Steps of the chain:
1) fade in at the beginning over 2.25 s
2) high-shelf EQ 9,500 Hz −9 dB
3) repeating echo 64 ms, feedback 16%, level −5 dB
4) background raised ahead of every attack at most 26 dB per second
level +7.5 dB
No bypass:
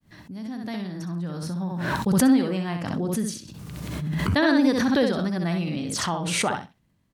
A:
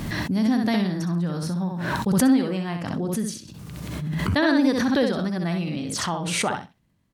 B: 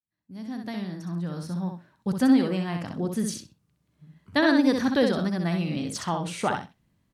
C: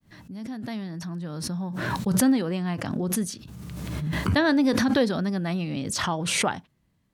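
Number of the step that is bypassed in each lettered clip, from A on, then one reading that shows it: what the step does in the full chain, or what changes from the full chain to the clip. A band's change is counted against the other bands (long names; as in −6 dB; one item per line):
1, change in momentary loudness spread −4 LU
4, 8 kHz band −5.0 dB
3, 8 kHz band +2.0 dB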